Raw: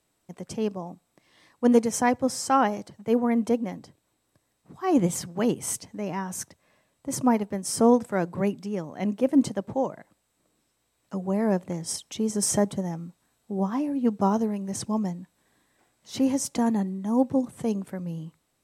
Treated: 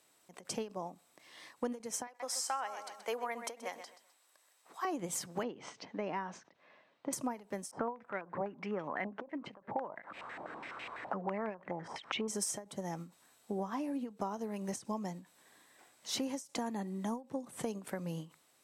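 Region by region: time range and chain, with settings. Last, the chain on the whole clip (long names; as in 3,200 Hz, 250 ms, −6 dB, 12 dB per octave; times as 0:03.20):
0:02.07–0:04.85: high-pass filter 680 Hz + repeating echo 128 ms, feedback 26%, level −14 dB
0:05.43–0:07.13: band-pass filter 150–5,300 Hz + high-frequency loss of the air 190 metres
0:07.71–0:12.28: high-pass filter 46 Hz + upward compression, threshold −29 dBFS + low-pass on a step sequencer 12 Hz 820–2,500 Hz
whole clip: high-pass filter 580 Hz 6 dB per octave; downward compressor 12 to 1, threshold −39 dBFS; every ending faded ahead of time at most 200 dB per second; level +5.5 dB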